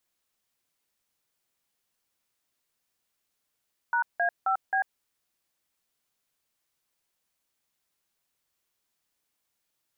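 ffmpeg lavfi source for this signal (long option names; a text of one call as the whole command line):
ffmpeg -f lavfi -i "aevalsrc='0.0562*clip(min(mod(t,0.266),0.094-mod(t,0.266))/0.002,0,1)*(eq(floor(t/0.266),0)*(sin(2*PI*941*mod(t,0.266))+sin(2*PI*1477*mod(t,0.266)))+eq(floor(t/0.266),1)*(sin(2*PI*697*mod(t,0.266))+sin(2*PI*1633*mod(t,0.266)))+eq(floor(t/0.266),2)*(sin(2*PI*770*mod(t,0.266))+sin(2*PI*1336*mod(t,0.266)))+eq(floor(t/0.266),3)*(sin(2*PI*770*mod(t,0.266))+sin(2*PI*1633*mod(t,0.266))))':duration=1.064:sample_rate=44100" out.wav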